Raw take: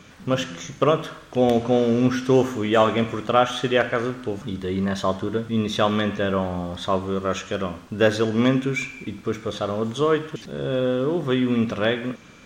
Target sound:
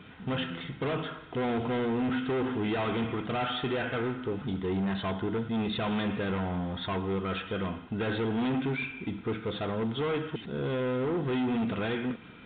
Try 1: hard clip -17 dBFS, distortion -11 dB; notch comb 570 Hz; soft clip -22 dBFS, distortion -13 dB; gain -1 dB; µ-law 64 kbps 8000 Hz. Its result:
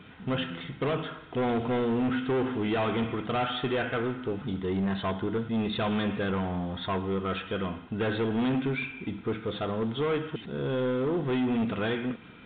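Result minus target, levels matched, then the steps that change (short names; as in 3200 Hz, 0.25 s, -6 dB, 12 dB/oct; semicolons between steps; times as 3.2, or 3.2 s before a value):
hard clip: distortion -5 dB
change: hard clip -23.5 dBFS, distortion -5 dB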